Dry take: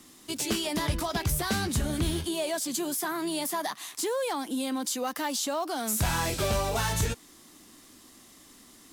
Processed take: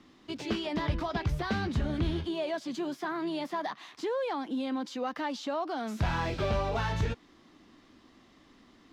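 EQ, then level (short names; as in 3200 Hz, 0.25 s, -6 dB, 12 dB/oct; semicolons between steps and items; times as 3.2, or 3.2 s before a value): air absorption 240 m; -1.0 dB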